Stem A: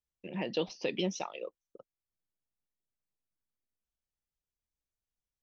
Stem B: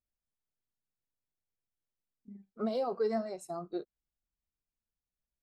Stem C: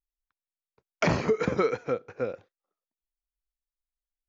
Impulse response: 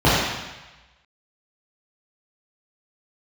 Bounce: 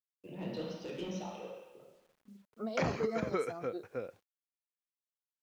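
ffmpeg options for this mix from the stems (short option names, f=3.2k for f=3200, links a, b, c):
-filter_complex "[0:a]asoftclip=type=tanh:threshold=-31.5dB,volume=-11.5dB,asplit=2[a][b];[b]volume=-19dB[c];[1:a]volume=-5.5dB[d];[2:a]adelay=1750,volume=-9dB[e];[3:a]atrim=start_sample=2205[f];[c][f]afir=irnorm=-1:irlink=0[g];[a][d][e][g]amix=inputs=4:normalize=0,acrusher=bits=11:mix=0:aa=0.000001"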